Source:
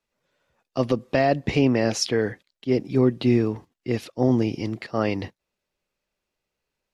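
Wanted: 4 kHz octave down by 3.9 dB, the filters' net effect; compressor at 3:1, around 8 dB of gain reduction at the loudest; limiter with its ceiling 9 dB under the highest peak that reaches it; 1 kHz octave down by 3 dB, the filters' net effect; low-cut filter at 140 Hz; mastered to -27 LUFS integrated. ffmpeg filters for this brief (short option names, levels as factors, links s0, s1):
-af "highpass=140,equalizer=f=1000:t=o:g=-5,equalizer=f=4000:t=o:g=-6,acompressor=threshold=0.0501:ratio=3,volume=2.51,alimiter=limit=0.168:level=0:latency=1"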